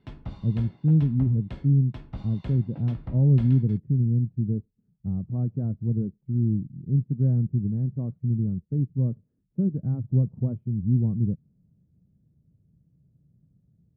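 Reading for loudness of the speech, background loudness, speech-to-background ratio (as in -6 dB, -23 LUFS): -25.5 LUFS, -43.0 LUFS, 17.5 dB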